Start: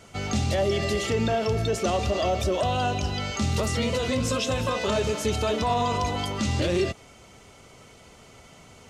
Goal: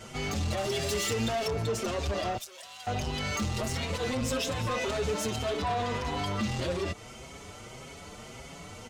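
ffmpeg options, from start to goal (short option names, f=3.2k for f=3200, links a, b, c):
-filter_complex "[0:a]asettb=1/sr,asplit=3[a][b][c];[a]atrim=end=0.574[d];[b]atrim=start=0.57:end=1.48,asetpts=PTS-STARTPTS,afade=t=in:d=0.004:c=qsin,afade=t=out:st=0.906:d=0.004:c=qsin,highshelf=f=3.3k:g=11.5[e];[c]atrim=start=1.476[f];[d][e]acrossfade=d=0.004:c1=hsin:c2=qsin[g];[g][f]acrossfade=d=0.004:c1=qsin:c2=hsin,acompressor=threshold=-32dB:ratio=2,asoftclip=type=tanh:threshold=-32.5dB,asettb=1/sr,asplit=3[h][i][j];[h]atrim=end=2.374[k];[i]atrim=start=2.37:end=2.87,asetpts=PTS-STARTPTS,afade=t=in:d=0.004:c=qsin,afade=t=out:st=0.496:d=0.004:c=qsin,aderivative[l];[j]atrim=start=2.866[m];[k][l]acrossfade=d=0.004:c1=hsin:c2=qsin[n];[n][m]acrossfade=d=0.004:c1=qsin:c2=hsin,asettb=1/sr,asplit=3[o][p][q];[o]atrim=end=5.604[r];[p]atrim=start=5.6:end=6.48,asetpts=PTS-STARTPTS,afade=t=in:d=0.004:c=qsin,afade=t=out:st=0.876:d=0.004:c=qsin,acrossover=split=5500[s][t];[t]acompressor=threshold=-54dB:ratio=4:attack=1:release=60[u];[s][u]amix=inputs=2:normalize=0[v];[q]atrim=start=6.476[w];[r][v]acrossfade=d=0.004:c1=hsin:c2=qsin[x];[x][w]acrossfade=d=0.004:c1=qsin:c2=hsin,asplit=2[y][z];[z]adelay=6.1,afreqshift=1.7[aa];[y][aa]amix=inputs=2:normalize=1,volume=8dB"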